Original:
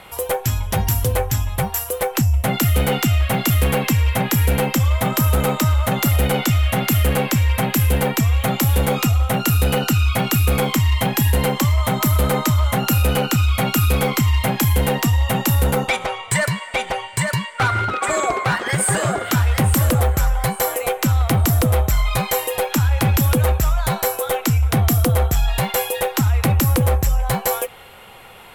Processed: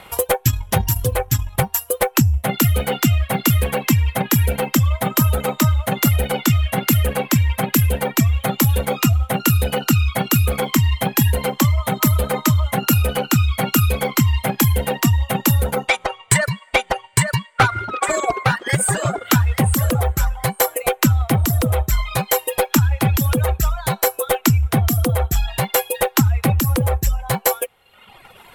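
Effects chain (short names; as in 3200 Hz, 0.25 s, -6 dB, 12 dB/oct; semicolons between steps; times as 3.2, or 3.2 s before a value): transient shaper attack +7 dB, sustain -5 dB; reverb removal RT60 1.2 s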